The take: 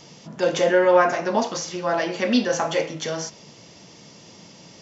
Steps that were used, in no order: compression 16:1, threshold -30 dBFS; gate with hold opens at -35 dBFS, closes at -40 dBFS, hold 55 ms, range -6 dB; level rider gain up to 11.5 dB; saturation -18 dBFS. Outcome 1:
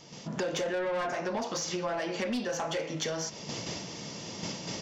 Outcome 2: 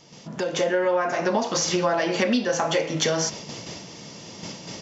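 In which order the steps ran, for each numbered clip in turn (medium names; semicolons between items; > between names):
saturation > gate with hold > level rider > compression; compression > saturation > gate with hold > level rider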